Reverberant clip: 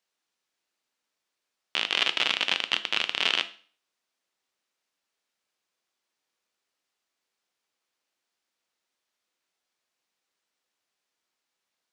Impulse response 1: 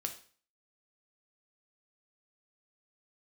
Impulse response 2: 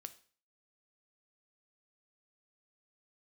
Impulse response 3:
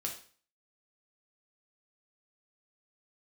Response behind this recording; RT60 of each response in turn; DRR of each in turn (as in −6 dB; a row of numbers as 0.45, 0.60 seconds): 2; 0.45, 0.45, 0.45 seconds; 4.0, 10.0, −0.5 decibels